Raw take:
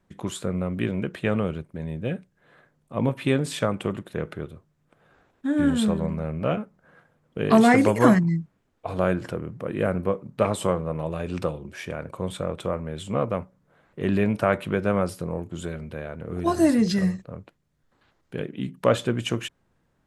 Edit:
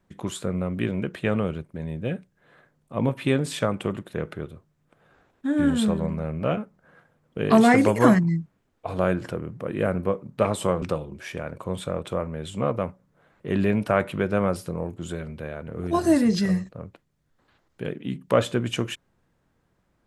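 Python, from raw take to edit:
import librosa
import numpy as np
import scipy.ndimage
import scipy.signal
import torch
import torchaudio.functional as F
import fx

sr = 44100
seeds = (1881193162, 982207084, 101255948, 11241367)

y = fx.edit(x, sr, fx.cut(start_s=10.82, length_s=0.53), tone=tone)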